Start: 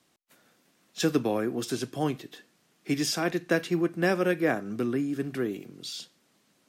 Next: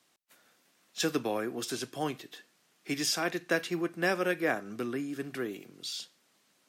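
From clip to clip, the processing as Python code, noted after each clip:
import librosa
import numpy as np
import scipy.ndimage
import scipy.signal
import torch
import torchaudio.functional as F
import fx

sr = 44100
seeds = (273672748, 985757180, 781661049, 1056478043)

y = fx.low_shelf(x, sr, hz=410.0, db=-10.0)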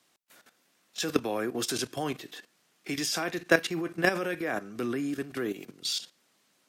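y = fx.level_steps(x, sr, step_db=13)
y = y * 10.0 ** (8.5 / 20.0)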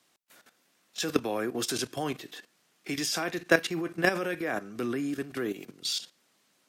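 y = x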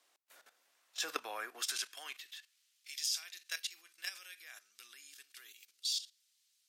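y = fx.cheby_harmonics(x, sr, harmonics=(8,), levels_db=(-43,), full_scale_db=-7.5)
y = fx.filter_sweep_highpass(y, sr, from_hz=520.0, to_hz=3900.0, start_s=0.45, end_s=2.93, q=1.0)
y = y * 10.0 ** (-4.5 / 20.0)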